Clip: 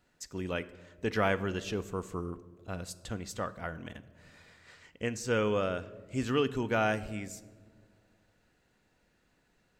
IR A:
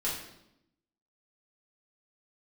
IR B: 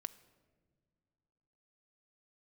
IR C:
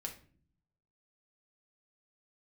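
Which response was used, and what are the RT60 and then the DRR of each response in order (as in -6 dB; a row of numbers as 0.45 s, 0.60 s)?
B; 0.80 s, no single decay rate, no single decay rate; -7.5 dB, 13.0 dB, 0.5 dB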